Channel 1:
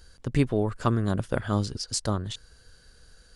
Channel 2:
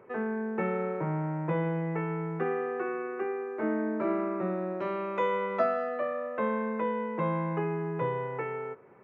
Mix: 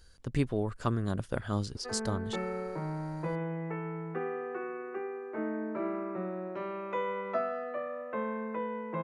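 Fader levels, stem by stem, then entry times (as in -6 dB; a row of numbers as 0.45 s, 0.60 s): -6.0 dB, -5.0 dB; 0.00 s, 1.75 s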